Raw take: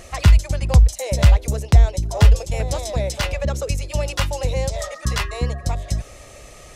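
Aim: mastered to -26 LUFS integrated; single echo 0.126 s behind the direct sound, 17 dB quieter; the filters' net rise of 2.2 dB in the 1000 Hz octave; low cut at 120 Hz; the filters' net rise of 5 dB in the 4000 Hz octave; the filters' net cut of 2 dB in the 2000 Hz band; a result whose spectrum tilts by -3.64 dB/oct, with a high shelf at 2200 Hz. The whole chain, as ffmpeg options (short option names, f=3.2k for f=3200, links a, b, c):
-af "highpass=120,equalizer=f=1k:t=o:g=3.5,equalizer=f=2k:t=o:g=-8,highshelf=f=2.2k:g=5.5,equalizer=f=4k:t=o:g=3.5,aecho=1:1:126:0.141,volume=-2.5dB"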